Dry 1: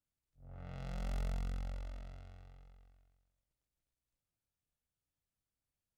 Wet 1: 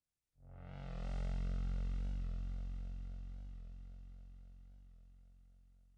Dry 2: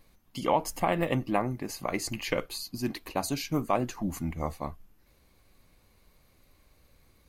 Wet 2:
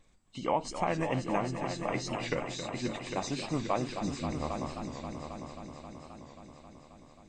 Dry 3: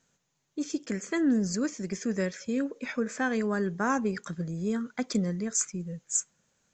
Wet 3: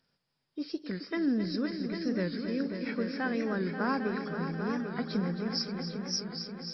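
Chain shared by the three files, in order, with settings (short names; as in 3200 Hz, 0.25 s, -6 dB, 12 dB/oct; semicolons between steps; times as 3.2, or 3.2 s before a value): nonlinear frequency compression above 2800 Hz 1.5:1; multi-head echo 0.267 s, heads all three, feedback 61%, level -11 dB; record warp 45 rpm, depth 100 cents; gain -4 dB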